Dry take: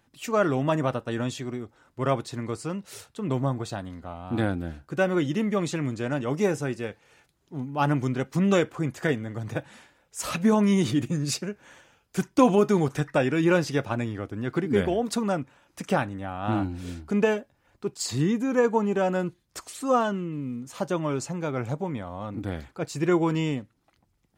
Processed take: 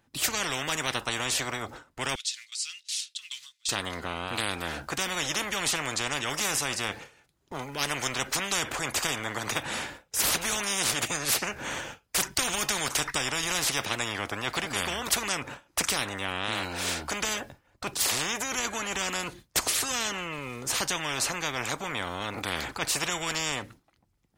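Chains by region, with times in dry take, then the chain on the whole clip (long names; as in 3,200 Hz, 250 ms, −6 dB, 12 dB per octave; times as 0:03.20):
0:02.15–0:03.69: one scale factor per block 7 bits + inverse Chebyshev high-pass filter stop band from 730 Hz, stop band 70 dB + high-frequency loss of the air 79 metres
whole clip: noise gate with hold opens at −45 dBFS; every bin compressed towards the loudest bin 10 to 1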